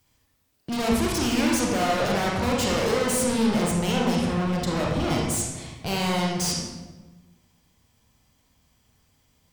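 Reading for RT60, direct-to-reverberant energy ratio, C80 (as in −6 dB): 1.2 s, −2.5 dB, 3.5 dB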